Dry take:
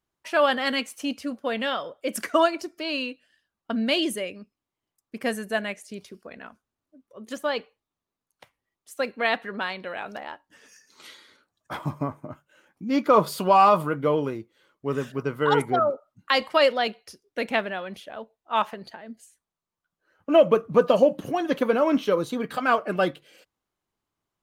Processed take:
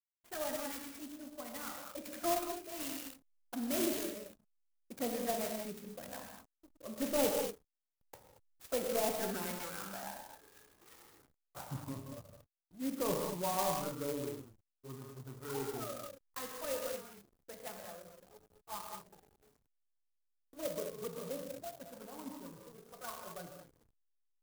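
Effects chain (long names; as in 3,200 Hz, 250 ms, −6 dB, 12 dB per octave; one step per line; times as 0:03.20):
source passing by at 0:07.19, 16 m/s, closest 15 metres
reversed playback
upward compression, threshold −52 dBFS
reversed playback
soft clipping −29.5 dBFS, distortion −10 dB
flanger swept by the level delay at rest 3 ms, full sweep at −34.5 dBFS
reverb whose tail is shaped and stops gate 260 ms flat, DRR 0 dB
slack as between gear wheels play −53.5 dBFS
converter with an unsteady clock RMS 0.1 ms
level +2.5 dB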